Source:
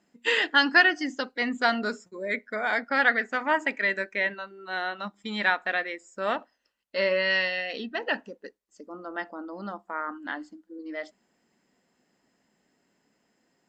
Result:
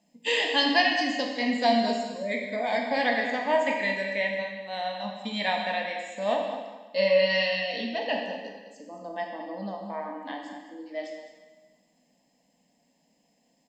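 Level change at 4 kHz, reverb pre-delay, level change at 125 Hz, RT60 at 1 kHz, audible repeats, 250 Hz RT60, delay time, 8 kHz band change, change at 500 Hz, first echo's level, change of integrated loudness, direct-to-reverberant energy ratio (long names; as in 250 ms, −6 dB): +2.5 dB, 7 ms, can't be measured, 1.3 s, 1, 1.3 s, 212 ms, can't be measured, +4.0 dB, −12.0 dB, −0.5 dB, 0.5 dB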